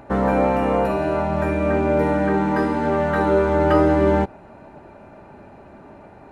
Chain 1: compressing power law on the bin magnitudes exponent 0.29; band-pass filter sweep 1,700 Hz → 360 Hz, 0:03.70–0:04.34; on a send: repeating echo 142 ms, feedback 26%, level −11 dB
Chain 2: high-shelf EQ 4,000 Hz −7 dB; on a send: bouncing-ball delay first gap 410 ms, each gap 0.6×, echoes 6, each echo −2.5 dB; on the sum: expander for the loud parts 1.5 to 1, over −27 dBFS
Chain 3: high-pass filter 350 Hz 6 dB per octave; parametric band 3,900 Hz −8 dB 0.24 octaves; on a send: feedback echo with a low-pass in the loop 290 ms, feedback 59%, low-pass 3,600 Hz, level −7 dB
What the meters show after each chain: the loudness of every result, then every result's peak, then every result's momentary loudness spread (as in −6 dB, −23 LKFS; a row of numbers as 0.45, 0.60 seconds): −25.5, −19.0, −21.0 LKFS; −11.5, −2.5, −6.0 dBFS; 5, 7, 16 LU